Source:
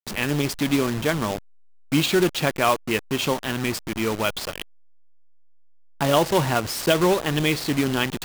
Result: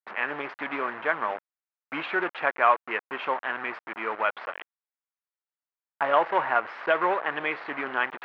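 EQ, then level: HPF 900 Hz 12 dB/oct; LPF 1900 Hz 24 dB/oct; +4.0 dB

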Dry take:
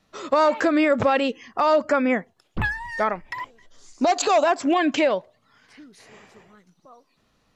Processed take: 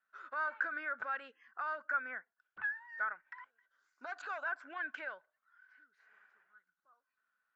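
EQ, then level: band-pass 1500 Hz, Q 16; +1.0 dB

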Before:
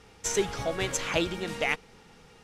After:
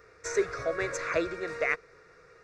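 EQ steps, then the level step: tape spacing loss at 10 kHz 35 dB; tilt +3.5 dB/oct; fixed phaser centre 840 Hz, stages 6; +7.5 dB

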